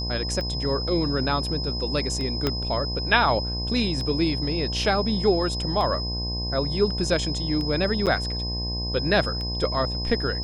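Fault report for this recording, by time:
mains buzz 60 Hz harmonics 18 −30 dBFS
scratch tick 33 1/3 rpm −20 dBFS
whistle 5,100 Hz −30 dBFS
0:02.47: click −9 dBFS
0:08.06–0:08.07: drop-out 7.9 ms

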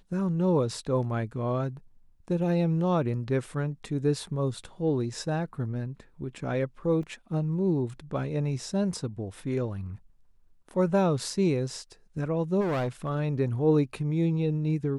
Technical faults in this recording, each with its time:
0:07.03: drop-out 2.9 ms
0:12.60–0:13.09: clipping −25 dBFS

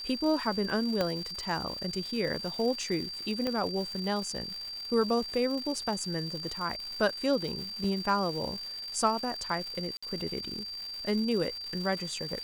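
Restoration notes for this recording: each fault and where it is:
surface crackle 310 per second −37 dBFS
whistle 4,700 Hz −37 dBFS
0:01.01: click −15 dBFS
0:03.47: click −18 dBFS
0:07.84: drop-out 3.2 ms
0:09.97–0:10.03: drop-out 55 ms

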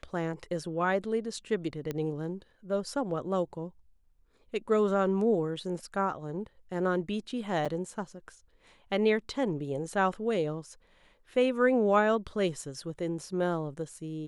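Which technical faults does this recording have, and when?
0:01.91: click −20 dBFS
0:07.65–0:07.66: drop-out 6.2 ms

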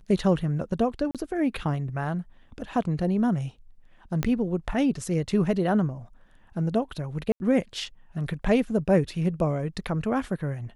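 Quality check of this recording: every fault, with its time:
0:01.11–0:01.15: drop-out 37 ms
0:04.23: click −12 dBFS
0:07.32–0:07.40: drop-out 81 ms

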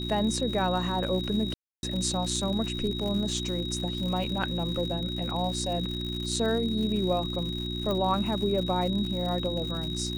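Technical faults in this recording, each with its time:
surface crackle 140 per second −34 dBFS
mains hum 60 Hz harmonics 6 −34 dBFS
whistle 3,800 Hz −35 dBFS
0:01.54–0:01.83: drop-out 291 ms
0:07.91: click −18 dBFS

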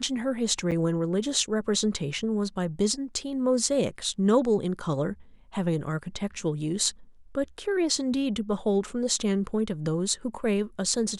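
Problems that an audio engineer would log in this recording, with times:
0:00.71–0:00.72: drop-out 7.4 ms

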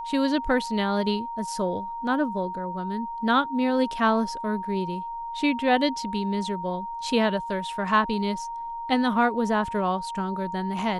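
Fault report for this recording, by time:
whistle 930 Hz −31 dBFS

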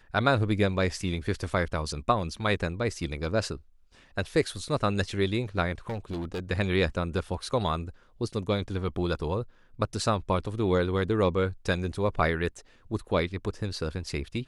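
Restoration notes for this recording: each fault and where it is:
0:05.89–0:06.40: clipping −29 dBFS

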